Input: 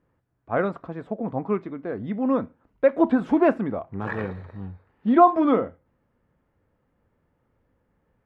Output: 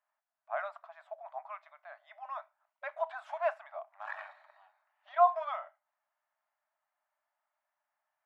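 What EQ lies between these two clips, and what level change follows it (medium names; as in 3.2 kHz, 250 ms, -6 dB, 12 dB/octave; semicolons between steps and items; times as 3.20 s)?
brick-wall FIR high-pass 580 Hz; -8.5 dB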